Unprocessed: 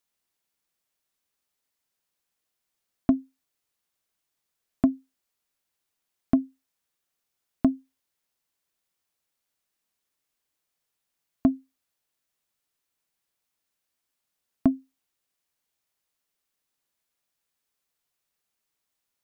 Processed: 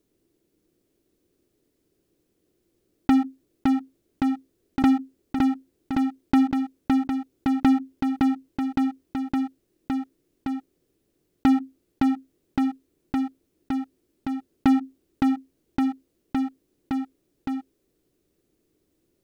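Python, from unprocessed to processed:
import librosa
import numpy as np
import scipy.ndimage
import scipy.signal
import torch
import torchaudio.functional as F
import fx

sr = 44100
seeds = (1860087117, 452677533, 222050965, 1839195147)

p1 = fx.curve_eq(x, sr, hz=(230.0, 340.0, 860.0), db=(0, 10, -20))
p2 = fx.leveller(p1, sr, passes=5)
p3 = p2 + fx.echo_feedback(p2, sr, ms=563, feedback_pct=48, wet_db=-9.0, dry=0)
p4 = fx.env_flatten(p3, sr, amount_pct=70)
y = p4 * 10.0 ** (-8.0 / 20.0)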